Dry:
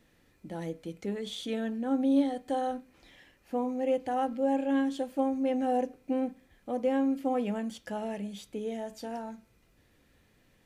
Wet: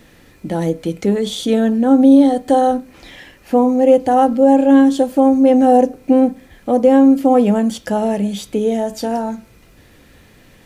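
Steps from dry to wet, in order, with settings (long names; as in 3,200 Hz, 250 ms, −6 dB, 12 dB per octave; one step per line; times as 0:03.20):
dynamic equaliser 2,300 Hz, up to −8 dB, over −52 dBFS, Q 0.85
boost into a limiter +19.5 dB
level −1 dB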